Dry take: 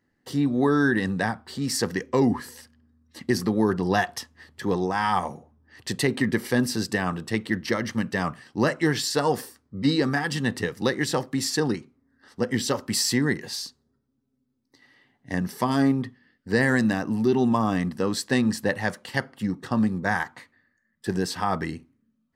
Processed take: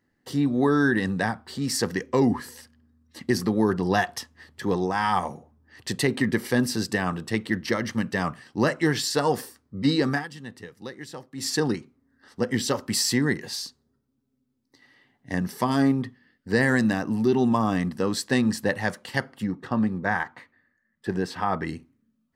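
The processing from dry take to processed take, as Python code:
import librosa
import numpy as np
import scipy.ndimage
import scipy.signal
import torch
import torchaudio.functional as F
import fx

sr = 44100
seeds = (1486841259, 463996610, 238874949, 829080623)

y = fx.bass_treble(x, sr, bass_db=-2, treble_db=-11, at=(19.44, 21.67))
y = fx.edit(y, sr, fx.fade_down_up(start_s=10.14, length_s=1.35, db=-14.0, fade_s=0.14), tone=tone)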